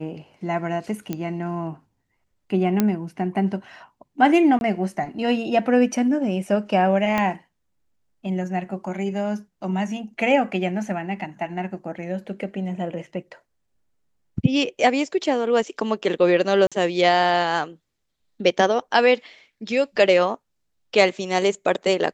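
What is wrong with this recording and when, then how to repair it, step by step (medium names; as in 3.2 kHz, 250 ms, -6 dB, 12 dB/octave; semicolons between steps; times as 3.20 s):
1.13 s: pop -14 dBFS
2.80 s: pop -6 dBFS
4.59–4.61 s: dropout 21 ms
7.18 s: pop -9 dBFS
16.67–16.72 s: dropout 46 ms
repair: de-click; interpolate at 4.59 s, 21 ms; interpolate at 16.67 s, 46 ms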